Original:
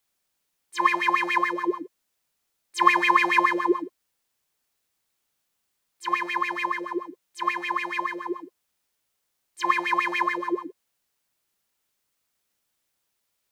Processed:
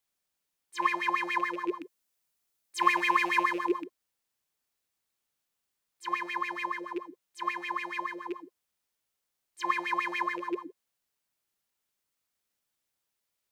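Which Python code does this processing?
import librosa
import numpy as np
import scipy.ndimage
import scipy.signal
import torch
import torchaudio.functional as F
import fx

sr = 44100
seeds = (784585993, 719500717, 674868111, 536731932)

y = fx.rattle_buzz(x, sr, strikes_db=-36.0, level_db=-27.0)
y = fx.high_shelf(y, sr, hz=6300.0, db=5.5, at=(1.81, 3.84))
y = F.gain(torch.from_numpy(y), -6.5).numpy()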